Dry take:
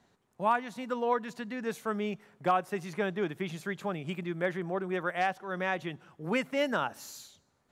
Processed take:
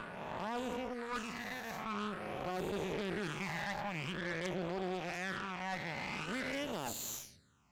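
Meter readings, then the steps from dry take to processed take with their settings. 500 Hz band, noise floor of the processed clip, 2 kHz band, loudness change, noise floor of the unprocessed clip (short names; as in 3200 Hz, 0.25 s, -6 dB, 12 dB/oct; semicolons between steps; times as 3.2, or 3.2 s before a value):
-8.0 dB, -60 dBFS, -4.5 dB, -6.5 dB, -73 dBFS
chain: spectral swells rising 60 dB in 2.78 s; reverse; compressor 6:1, threshold -37 dBFS, peak gain reduction 17 dB; reverse; phaser stages 8, 0.47 Hz, lowest notch 380–1700 Hz; added harmonics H 3 -8 dB, 5 -10 dB, 6 -19 dB, 7 -18 dB, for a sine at -29.5 dBFS; gain +6.5 dB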